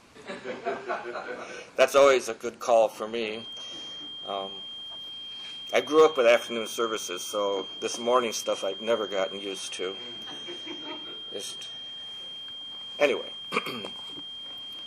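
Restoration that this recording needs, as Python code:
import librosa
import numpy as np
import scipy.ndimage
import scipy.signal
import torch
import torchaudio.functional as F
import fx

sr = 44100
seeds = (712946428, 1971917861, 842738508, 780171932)

y = fx.fix_declip(x, sr, threshold_db=-10.5)
y = fx.notch(y, sr, hz=3200.0, q=30.0)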